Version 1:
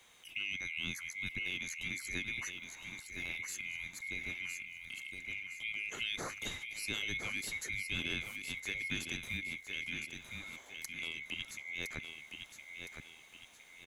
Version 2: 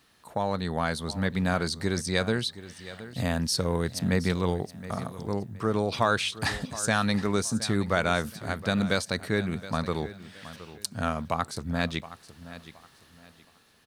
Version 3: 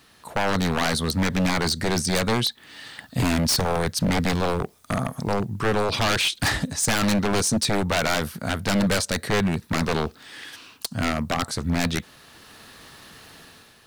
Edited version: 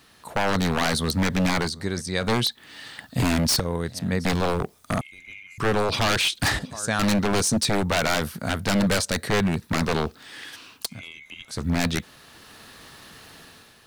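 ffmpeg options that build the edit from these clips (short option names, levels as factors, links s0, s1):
-filter_complex "[1:a]asplit=3[s0][s1][s2];[0:a]asplit=2[s3][s4];[2:a]asplit=6[s5][s6][s7][s8][s9][s10];[s5]atrim=end=1.71[s11];[s0]atrim=start=1.61:end=2.3[s12];[s6]atrim=start=2.2:end=3.602[s13];[s1]atrim=start=3.598:end=4.252[s14];[s7]atrim=start=4.248:end=5.012[s15];[s3]atrim=start=5.008:end=5.582[s16];[s8]atrim=start=5.578:end=6.592[s17];[s2]atrim=start=6.588:end=6.992[s18];[s9]atrim=start=6.988:end=11.02[s19];[s4]atrim=start=10.86:end=11.61[s20];[s10]atrim=start=11.45[s21];[s11][s12]acrossfade=d=0.1:c1=tri:c2=tri[s22];[s22][s13]acrossfade=d=0.1:c1=tri:c2=tri[s23];[s23][s14]acrossfade=d=0.004:c1=hsin:c2=hsin[s24];[s24][s15]acrossfade=d=0.004:c1=hsin:c2=hsin[s25];[s25][s16]acrossfade=d=0.004:c1=hsin:c2=hsin[s26];[s26][s17]acrossfade=d=0.004:c1=hsin:c2=hsin[s27];[s27][s18]acrossfade=d=0.004:c1=hsin:c2=hsin[s28];[s28][s19]acrossfade=d=0.004:c1=hsin:c2=hsin[s29];[s29][s20]acrossfade=d=0.16:c1=tri:c2=tri[s30];[s30][s21]acrossfade=d=0.16:c1=tri:c2=tri"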